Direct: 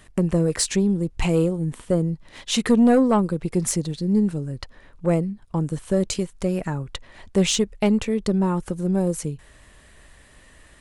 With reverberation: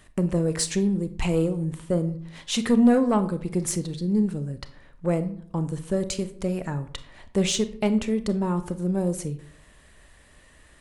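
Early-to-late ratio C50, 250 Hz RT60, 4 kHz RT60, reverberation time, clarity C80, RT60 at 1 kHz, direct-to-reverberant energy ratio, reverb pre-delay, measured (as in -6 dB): 14.5 dB, 0.70 s, 0.35 s, 0.55 s, 17.5 dB, 0.55 s, 11.0 dB, 28 ms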